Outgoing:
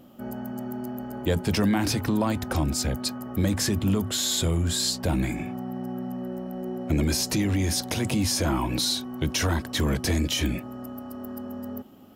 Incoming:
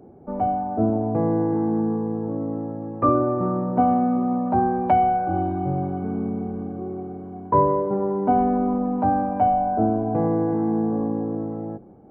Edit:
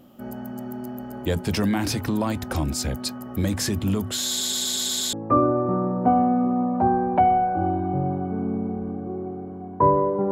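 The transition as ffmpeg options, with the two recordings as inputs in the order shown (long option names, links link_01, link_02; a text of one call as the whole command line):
ffmpeg -i cue0.wav -i cue1.wav -filter_complex "[0:a]apad=whole_dur=10.31,atrim=end=10.31,asplit=7[link_01][link_02][link_03][link_04][link_05][link_06][link_07];[link_01]atrim=end=4.412[link_08];[link_02]atrim=start=4.288:end=4.412[link_09];[link_03]atrim=start=4.288:end=4.412[link_10];[link_04]atrim=start=4.288:end=4.412[link_11];[link_05]atrim=start=4.288:end=4.412[link_12];[link_06]atrim=start=4.288:end=4.412[link_13];[link_07]atrim=start=4.288:end=4.412[link_14];[1:a]atrim=start=2.848:end=8.03[link_15];[link_08][link_09]acrossfade=duration=0.004:curve1=hsin:curve2=hsin[link_16];[link_16][link_10]acrossfade=duration=0.004:curve1=hsin:curve2=hsin[link_17];[link_17][link_11]acrossfade=duration=0.004:curve1=hsin:curve2=hsin[link_18];[link_18][link_12]acrossfade=duration=0.004:curve1=hsin:curve2=hsin[link_19];[link_19][link_13]acrossfade=duration=0.004:curve1=hsin:curve2=hsin[link_20];[link_20][link_14]acrossfade=duration=0.004:curve1=hsin:curve2=hsin[link_21];[link_21][link_15]acrossfade=duration=0.004:curve1=hsin:curve2=hsin" out.wav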